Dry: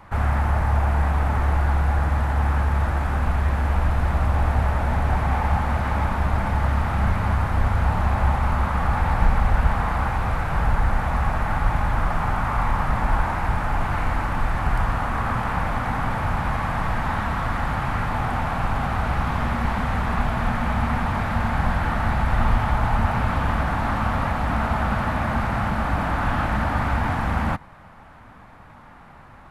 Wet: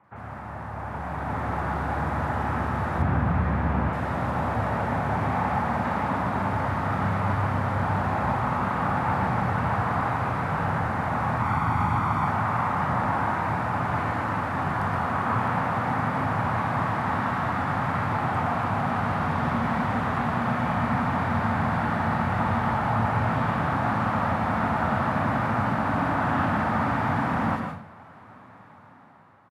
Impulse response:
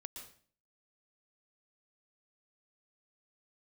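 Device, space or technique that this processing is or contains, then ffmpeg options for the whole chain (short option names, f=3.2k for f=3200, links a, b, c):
far laptop microphone: -filter_complex "[0:a]aemphasis=mode=reproduction:type=cd[a];[1:a]atrim=start_sample=2205[b];[a][b]afir=irnorm=-1:irlink=0,highpass=f=110:w=0.5412,highpass=f=110:w=1.3066,dynaudnorm=f=350:g=7:m=11.5dB,asettb=1/sr,asplit=3[c][d][e];[c]atrim=end=2.984[f];[d]atrim=start=2.98:end=3.89,asetpts=PTS-STARTPTS,afade=t=in:d=0.004:c=qsin,afade=t=out:st=0.906:d=0.004:c=qsin,bass=f=250:g=8,treble=f=4k:g=-10[g];[e]atrim=start=3.886[h];[f][g]acrossfade=d=0.004:c1=hsin:c2=qsin[i];[i][h]acrossfade=d=0.004:c1=qsin:c2=hsin,asettb=1/sr,asplit=3[j][k][l];[j]atrim=end=11.404[m];[k]atrim=start=11.4:end=12.28,asetpts=PTS-STARTPTS,afade=t=in:d=0.004:c=qsin,afade=t=out:st=0.876:d=0.004:c=qsin,aecho=1:1:0.9:0.51,atrim=end_sample=38808[n];[l]atrim=start=12.276[o];[m][n]acrossfade=d=0.004:c1=hsin:c2=qsin[p];[p][o]acrossfade=d=0.004:c1=qsin:c2=hsin,acrossover=split=2900[q][r];[r]adelay=40[s];[q][s]amix=inputs=2:normalize=0,volume=-6.5dB"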